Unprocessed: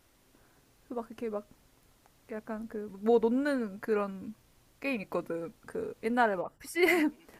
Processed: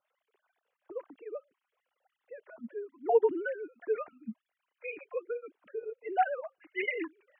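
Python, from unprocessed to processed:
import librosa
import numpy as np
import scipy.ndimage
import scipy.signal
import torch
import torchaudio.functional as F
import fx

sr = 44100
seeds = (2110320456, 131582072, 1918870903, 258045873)

y = fx.sine_speech(x, sr)
y = fx.dynamic_eq(y, sr, hz=800.0, q=3.5, threshold_db=-49.0, ratio=4.0, max_db=8)
y = fx.flanger_cancel(y, sr, hz=1.2, depth_ms=4.6)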